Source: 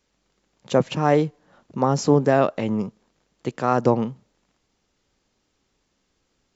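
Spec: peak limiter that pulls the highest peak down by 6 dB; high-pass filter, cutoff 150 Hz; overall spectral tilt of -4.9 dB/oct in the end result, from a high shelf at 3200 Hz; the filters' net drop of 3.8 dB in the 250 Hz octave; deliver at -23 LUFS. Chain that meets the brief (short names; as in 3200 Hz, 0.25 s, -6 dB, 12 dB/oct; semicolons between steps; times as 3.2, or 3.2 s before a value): HPF 150 Hz; bell 250 Hz -4 dB; high shelf 3200 Hz +5.5 dB; gain +3 dB; limiter -9 dBFS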